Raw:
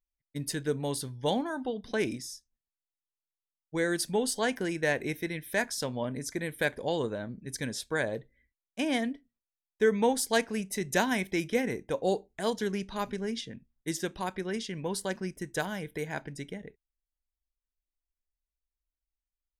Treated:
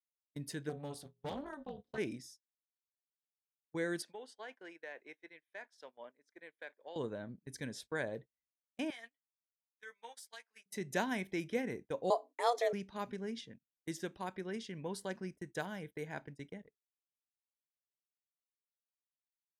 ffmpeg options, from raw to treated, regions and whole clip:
-filter_complex "[0:a]asettb=1/sr,asplit=3[s0][s1][s2];[s0]atrim=end=0.694[s3];[s1]atrim=start=0.69:end=1.98,asetpts=PTS-STARTPTS,afade=t=in:d=0.004:c=qsin,afade=t=out:st=1.286:d=0.004:c=qsin,bandreject=f=216.6:t=h:w=4,bandreject=f=433.2:t=h:w=4,bandreject=f=649.8:t=h:w=4,bandreject=f=866.4:t=h:w=4,bandreject=f=1083:t=h:w=4,bandreject=f=1299.6:t=h:w=4,bandreject=f=1516.2:t=h:w=4,bandreject=f=1732.8:t=h:w=4,bandreject=f=1949.4:t=h:w=4,bandreject=f=2166:t=h:w=4,bandreject=f=2382.6:t=h:w=4,bandreject=f=2599.2:t=h:w=4,bandreject=f=2815.8:t=h:w=4,bandreject=f=3032.4:t=h:w=4,bandreject=f=3249:t=h:w=4,bandreject=f=3465.6:t=h:w=4,bandreject=f=3682.2:t=h:w=4,bandreject=f=3898.8:t=h:w=4,tremolo=f=290:d=0.974,asoftclip=type=hard:threshold=0.0473[s4];[s2]atrim=start=1.976[s5];[s3][s4]acrossfade=d=0.004:c1=hsin:c2=qsin[s6];[s6][s5]acrossfade=d=0.004:c1=qsin:c2=hsin,asettb=1/sr,asplit=3[s7][s8][s9];[s7]atrim=end=4.024[s10];[s8]atrim=start=4.02:end=6.96,asetpts=PTS-STARTPTS,afade=t=in:d=0.004:c=qsin,afade=t=out:st=2.936:d=0.004:c=qsin,highpass=410,lowpass=2800,aemphasis=mode=production:type=bsi,acompressor=threshold=0.0112:ratio=2.5:attack=3.2:release=140:knee=1:detection=peak[s11];[s9]atrim=start=6.956[s12];[s10][s11]acrossfade=d=0.004:c1=hsin:c2=qsin[s13];[s13][s12]acrossfade=d=0.004:c1=qsin:c2=hsin,asettb=1/sr,asplit=3[s14][s15][s16];[s14]atrim=end=8.904[s17];[s15]atrim=start=8.9:end=10.66,asetpts=PTS-STARTPTS,afade=t=in:d=0.004:c=qsin,afade=t=out:st=1.756:d=0.004:c=qsin,highpass=1300,acompressor=threshold=0.0141:ratio=12:attack=3.2:release=140:knee=1:detection=peak,asplit=2[s18][s19];[s19]adelay=13,volume=0.531[s20];[s18][s20]amix=inputs=2:normalize=0,atrim=end_sample=77616[s21];[s16]atrim=start=10.656[s22];[s17][s21]acrossfade=d=0.004:c1=hsin:c2=qsin[s23];[s23][s22]acrossfade=d=0.004:c1=qsin:c2=hsin,asettb=1/sr,asplit=3[s24][s25][s26];[s24]atrim=end=12.104[s27];[s25]atrim=start=12.1:end=12.73,asetpts=PTS-STARTPTS,afade=t=in:d=0.004:c=qsin,afade=t=out:st=0.626:d=0.004:c=qsin,acontrast=57,afreqshift=240[s28];[s26]atrim=start=12.726[s29];[s27][s28]acrossfade=d=0.004:c1=hsin:c2=qsin[s30];[s30][s29]acrossfade=d=0.004:c1=qsin:c2=hsin,highpass=79,agate=range=0.0501:threshold=0.00891:ratio=16:detection=peak,highshelf=f=4100:g=-6,volume=0.422"

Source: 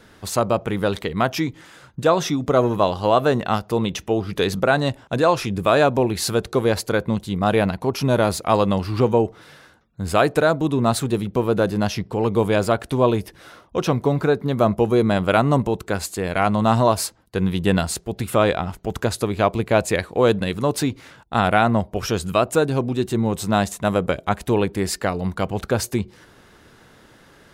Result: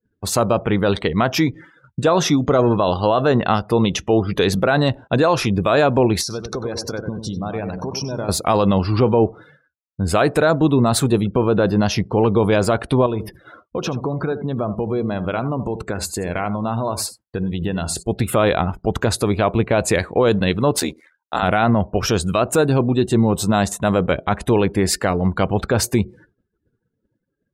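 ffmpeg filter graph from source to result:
-filter_complex "[0:a]asettb=1/sr,asplit=3[s0][s1][s2];[s0]atrim=end=6.214[s3];[s1]atrim=start=6.21:end=8.29,asetpts=PTS-STARTPTS,afade=t=in:d=0.004:c=qsin,afade=t=out:st=2.076:d=0.004:c=qsin,equalizer=f=5600:w=4.5:g=14,acompressor=threshold=0.0355:ratio=6:attack=3.2:release=140:knee=1:detection=peak,asplit=2[s4][s5];[s5]adelay=94,lowpass=f=3000:p=1,volume=0.501,asplit=2[s6][s7];[s7]adelay=94,lowpass=f=3000:p=1,volume=0.5,asplit=2[s8][s9];[s9]adelay=94,lowpass=f=3000:p=1,volume=0.5,asplit=2[s10][s11];[s11]adelay=94,lowpass=f=3000:p=1,volume=0.5,asplit=2[s12][s13];[s13]adelay=94,lowpass=f=3000:p=1,volume=0.5,asplit=2[s14][s15];[s15]adelay=94,lowpass=f=3000:p=1,volume=0.5[s16];[s4][s6][s8][s10][s12][s14][s16]amix=inputs=7:normalize=0,atrim=end_sample=91728[s17];[s2]atrim=start=8.286[s18];[s3][s17]acrossfade=d=0.004:c1=hsin:c2=qsin[s19];[s19][s18]acrossfade=d=0.004:c1=qsin:c2=hsin,asettb=1/sr,asplit=3[s20][s21][s22];[s20]atrim=end=13.064[s23];[s21]atrim=start=13.06:end=18.03,asetpts=PTS-STARTPTS,afade=t=in:d=0.004:c=qsin,afade=t=out:st=4.966:d=0.004:c=qsin,acompressor=threshold=0.0501:ratio=4:attack=3.2:release=140:knee=1:detection=peak,aecho=1:1:79:0.251,atrim=end_sample=219177[s24];[s22]atrim=start=18.026[s25];[s23][s24]acrossfade=d=0.004:c1=hsin:c2=qsin[s26];[s26][s25]acrossfade=d=0.004:c1=qsin:c2=hsin,asettb=1/sr,asplit=3[s27][s28][s29];[s27]atrim=end=20.794[s30];[s28]atrim=start=20.79:end=21.43,asetpts=PTS-STARTPTS,afade=t=in:d=0.004:c=qsin,afade=t=out:st=0.636:d=0.004:c=qsin,highpass=54,bass=f=250:g=-13,treble=f=4000:g=4,aeval=exprs='val(0)*sin(2*PI*40*n/s)':c=same[s31];[s29]atrim=start=21.426[s32];[s30][s31]acrossfade=d=0.004:c1=hsin:c2=qsin[s33];[s33][s32]acrossfade=d=0.004:c1=qsin:c2=hsin,afftdn=nr=28:nf=-42,agate=range=0.0224:threshold=0.00708:ratio=3:detection=peak,alimiter=limit=0.237:level=0:latency=1:release=23,volume=2"

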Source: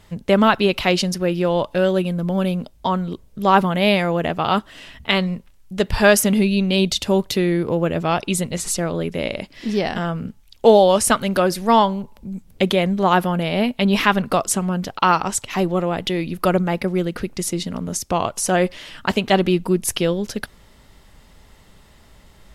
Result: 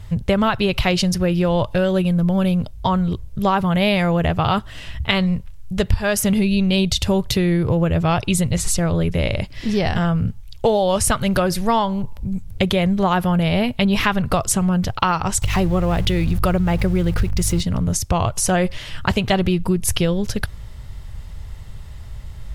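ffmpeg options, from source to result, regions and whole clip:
-filter_complex "[0:a]asettb=1/sr,asplit=3[s0][s1][s2];[s0]atrim=end=15.424[s3];[s1]atrim=start=15.42:end=17.61,asetpts=PTS-STARTPTS,afade=t=in:d=0.004:c=qsin,afade=t=out:st=2.186:d=0.004:c=qsin,aeval=exprs='val(0)+0.5*0.0224*sgn(val(0))':c=same,aeval=exprs='val(0)+0.0141*(sin(2*PI*50*n/s)+sin(2*PI*2*50*n/s)/2+sin(2*PI*3*50*n/s)/3+sin(2*PI*4*50*n/s)/4+sin(2*PI*5*50*n/s)/5)':c=same[s4];[s2]atrim=start=17.606[s5];[s3][s4]acrossfade=d=0.004:c1=hsin:c2=qsin[s6];[s6][s5]acrossfade=d=0.004:c1=qsin:c2=hsin,lowshelf=f=160:t=q:w=1.5:g=13.5,acompressor=threshold=0.141:ratio=6,volume=1.41"

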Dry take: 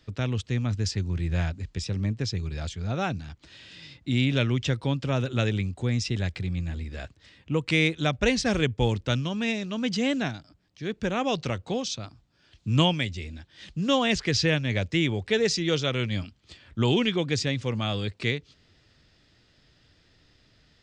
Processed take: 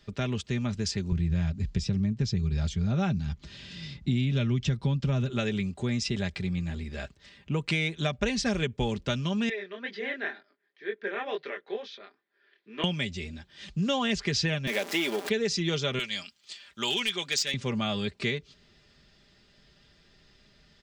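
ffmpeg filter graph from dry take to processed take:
-filter_complex "[0:a]asettb=1/sr,asplit=3[s0][s1][s2];[s0]atrim=end=1.124[s3];[s1]atrim=start=1.12:end=5.3,asetpts=PTS-STARTPTS,afade=t=in:d=0.004:c=qsin,afade=t=out:st=4.176:d=0.004:c=qsin,lowpass=7000,bass=f=250:g=12,treble=f=4000:g=4[s4];[s2]atrim=start=5.296[s5];[s3][s4]acrossfade=d=0.004:c1=hsin:c2=qsin[s6];[s6][s5]acrossfade=d=0.004:c1=qsin:c2=hsin,asettb=1/sr,asplit=3[s7][s8][s9];[s7]atrim=end=9.494[s10];[s8]atrim=start=9.49:end=12.84,asetpts=PTS-STARTPTS,afade=t=in:d=0.004:c=qsin,afade=t=out:st=3.346:d=0.004:c=qsin,flanger=delay=19.5:depth=7.7:speed=2.1,highpass=f=380:w=0.5412,highpass=f=380:w=1.3066,equalizer=f=410:t=q:w=4:g=4,equalizer=f=590:t=q:w=4:g=-7,equalizer=f=840:t=q:w=4:g=-8,equalizer=f=1200:t=q:w=4:g=-6,equalizer=f=1800:t=q:w=4:g=9,equalizer=f=2800:t=q:w=4:g=-9,lowpass=f=3200:w=0.5412,lowpass=f=3200:w=1.3066[s11];[s9]atrim=start=12.836[s12];[s10][s11]acrossfade=d=0.004:c1=hsin:c2=qsin[s13];[s13][s12]acrossfade=d=0.004:c1=qsin:c2=hsin,asettb=1/sr,asplit=3[s14][s15][s16];[s14]atrim=end=14.674[s17];[s15]atrim=start=14.67:end=15.29,asetpts=PTS-STARTPTS,afade=t=in:d=0.004:c=qsin,afade=t=out:st=0.616:d=0.004:c=qsin,aeval=exprs='val(0)+0.5*0.0398*sgn(val(0))':c=same,highpass=f=280:w=0.5412,highpass=f=280:w=1.3066[s18];[s16]atrim=start=15.286[s19];[s17][s18]acrossfade=d=0.004:c1=hsin:c2=qsin[s20];[s20][s19]acrossfade=d=0.004:c1=qsin:c2=hsin,asettb=1/sr,asplit=3[s21][s22][s23];[s21]atrim=end=15.994[s24];[s22]atrim=start=15.99:end=17.54,asetpts=PTS-STARTPTS,afade=t=in:d=0.004:c=qsin,afade=t=out:st=1.546:d=0.004:c=qsin,highpass=f=1200:p=1,highshelf=f=3300:g=10,asoftclip=type=hard:threshold=0.133[s25];[s23]atrim=start=17.536[s26];[s24][s25]acrossfade=d=0.004:c1=hsin:c2=qsin[s27];[s27][s26]acrossfade=d=0.004:c1=qsin:c2=hsin,aecho=1:1:5:0.56,acompressor=threshold=0.0631:ratio=6"

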